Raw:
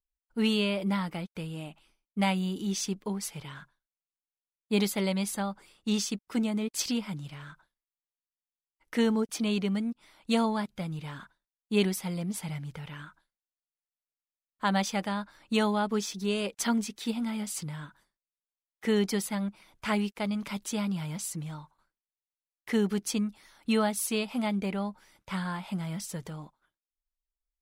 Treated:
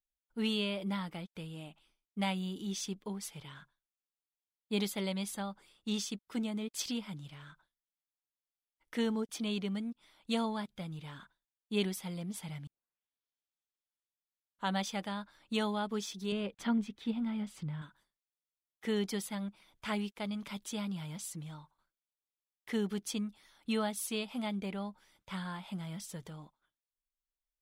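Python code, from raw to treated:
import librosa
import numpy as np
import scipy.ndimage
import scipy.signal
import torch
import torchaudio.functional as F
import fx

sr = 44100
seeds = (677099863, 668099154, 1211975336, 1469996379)

y = fx.bass_treble(x, sr, bass_db=7, treble_db=-15, at=(16.32, 17.82))
y = fx.edit(y, sr, fx.tape_start(start_s=12.67, length_s=2.09), tone=tone)
y = fx.peak_eq(y, sr, hz=3400.0, db=6.0, octaves=0.25)
y = F.gain(torch.from_numpy(y), -7.0).numpy()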